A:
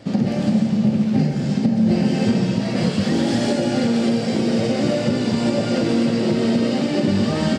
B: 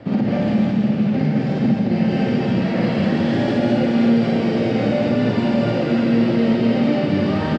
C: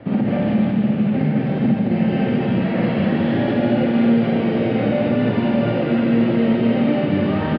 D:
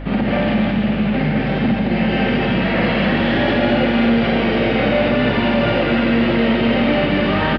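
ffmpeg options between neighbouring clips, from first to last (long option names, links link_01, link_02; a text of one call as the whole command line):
ffmpeg -i in.wav -filter_complex "[0:a]lowpass=2300,acrossover=split=200|1600[link_01][link_02][link_03];[link_01]acompressor=threshold=-31dB:ratio=4[link_04];[link_02]acompressor=threshold=-26dB:ratio=4[link_05];[link_03]acompressor=threshold=-40dB:ratio=4[link_06];[link_04][link_05][link_06]amix=inputs=3:normalize=0,aecho=1:1:52.48|215.7:0.891|0.891,volume=3.5dB" out.wav
ffmpeg -i in.wav -af "lowpass=frequency=3400:width=0.5412,lowpass=frequency=3400:width=1.3066" out.wav
ffmpeg -i in.wav -af "aeval=exprs='val(0)+0.0398*(sin(2*PI*50*n/s)+sin(2*PI*2*50*n/s)/2+sin(2*PI*3*50*n/s)/3+sin(2*PI*4*50*n/s)/4+sin(2*PI*5*50*n/s)/5)':channel_layout=same,acontrast=51,tiltshelf=frequency=750:gain=-6.5" out.wav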